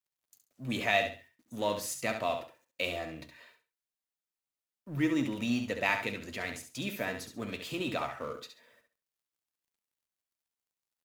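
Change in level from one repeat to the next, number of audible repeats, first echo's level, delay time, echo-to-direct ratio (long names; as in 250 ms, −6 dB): −12.5 dB, 3, −7.5 dB, 68 ms, −7.0 dB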